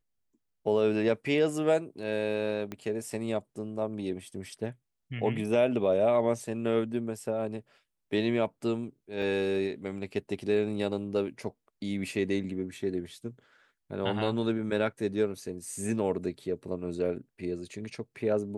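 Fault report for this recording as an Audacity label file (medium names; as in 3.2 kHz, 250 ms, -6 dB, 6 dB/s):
2.720000	2.720000	pop -23 dBFS
9.220000	9.220000	dropout 3.8 ms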